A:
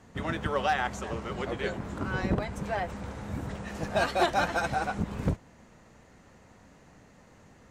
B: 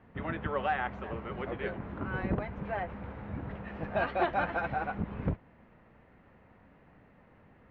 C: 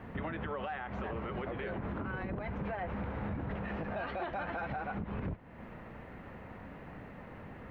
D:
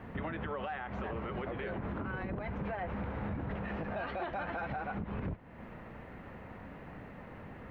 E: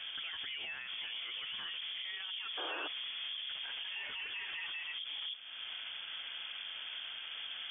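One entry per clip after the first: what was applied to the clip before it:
LPF 2700 Hz 24 dB/oct; gain -3.5 dB
compressor 2.5:1, threshold -45 dBFS, peak gain reduction 14 dB; limiter -41 dBFS, peak gain reduction 10.5 dB; gain +11.5 dB
nothing audible
inverted band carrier 3400 Hz; limiter -38 dBFS, peak gain reduction 11.5 dB; painted sound noise, 2.57–2.88, 290–1700 Hz -47 dBFS; gain +4 dB

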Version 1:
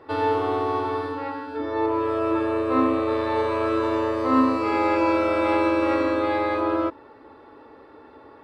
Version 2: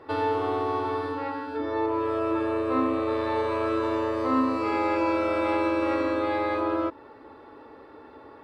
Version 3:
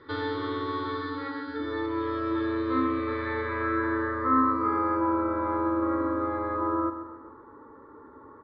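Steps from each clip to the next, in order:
compressor 1.5:1, threshold -28 dBFS, peak gain reduction 5 dB
low-pass sweep 3400 Hz -> 1000 Hz, 2.62–5.04; fixed phaser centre 2700 Hz, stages 6; feedback echo 0.133 s, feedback 48%, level -11 dB

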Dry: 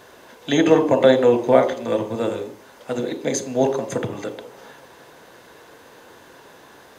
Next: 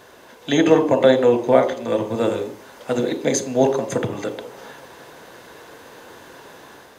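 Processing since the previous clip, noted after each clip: AGC gain up to 4 dB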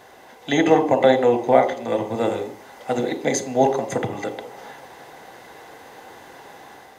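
small resonant body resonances 780/2000 Hz, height 12 dB, ringing for 35 ms; gain -2.5 dB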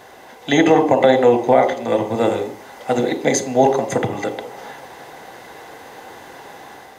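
maximiser +5.5 dB; gain -1 dB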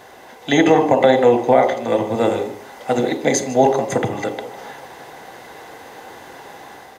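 echo 0.152 s -17.5 dB

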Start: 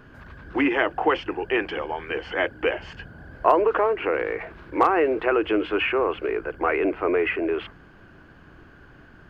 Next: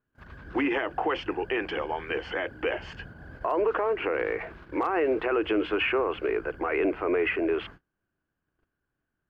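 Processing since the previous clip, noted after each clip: gate -43 dBFS, range -32 dB; limiter -16 dBFS, peak gain reduction 11.5 dB; gain -1.5 dB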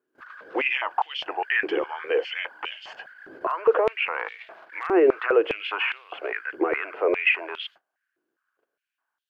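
stepped high-pass 4.9 Hz 360–3400 Hz

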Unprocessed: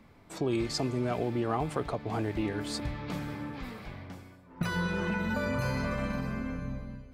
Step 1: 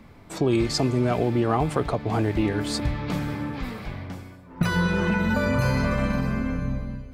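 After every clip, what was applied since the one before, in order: low shelf 180 Hz +3.5 dB; gain +7 dB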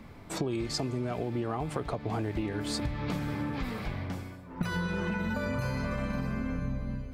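compressor 6:1, threshold -29 dBFS, peak gain reduction 11.5 dB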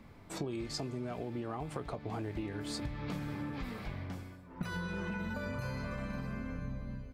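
doubler 21 ms -14 dB; gain -6.5 dB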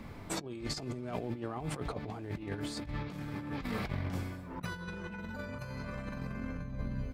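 negative-ratio compressor -42 dBFS, ratio -0.5; gain +4.5 dB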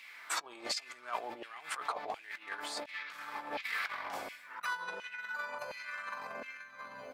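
LFO high-pass saw down 1.4 Hz 590–2600 Hz; gain +2.5 dB

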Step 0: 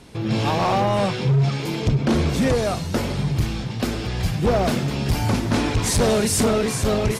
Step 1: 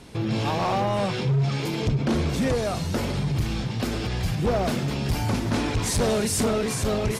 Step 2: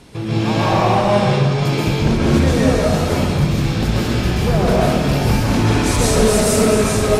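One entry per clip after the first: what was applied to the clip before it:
limiter -18.5 dBFS, peak gain reduction 4.5 dB
plate-style reverb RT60 1.7 s, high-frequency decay 0.6×, pre-delay 0.115 s, DRR -6.5 dB; gain +2 dB

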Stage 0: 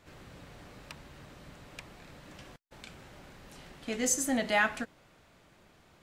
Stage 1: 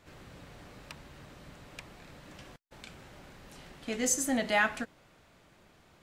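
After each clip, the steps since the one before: nothing audible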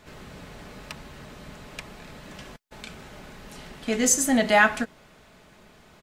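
comb 4.7 ms, depth 33%; gain +7.5 dB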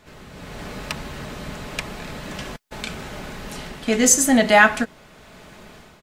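AGC gain up to 10 dB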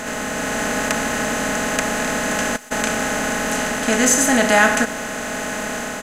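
per-bin compression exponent 0.4; gain -4 dB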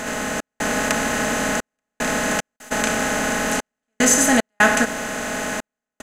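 step gate "xx.xxxxx.." 75 bpm -60 dB

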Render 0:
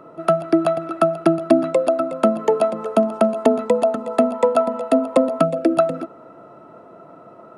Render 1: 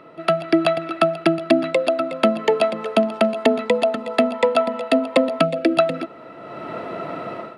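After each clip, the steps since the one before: AGC gain up to 16 dB; band shelf 2900 Hz +12 dB; gain -2.5 dB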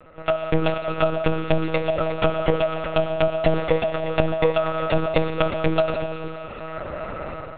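on a send at -4 dB: reverb RT60 3.7 s, pre-delay 3 ms; on the sum: monotone LPC vocoder at 8 kHz 160 Hz; gain -3 dB

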